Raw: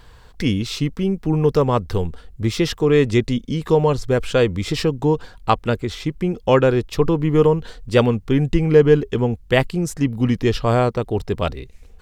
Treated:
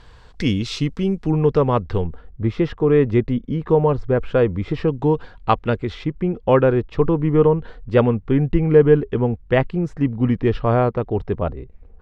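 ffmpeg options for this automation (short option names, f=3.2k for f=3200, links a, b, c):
-af "asetnsamples=n=441:p=0,asendcmd='1.31 lowpass f 2900;2.04 lowpass f 1600;4.88 lowpass f 3000;6.04 lowpass f 1900;11.35 lowpass f 1100',lowpass=6.6k"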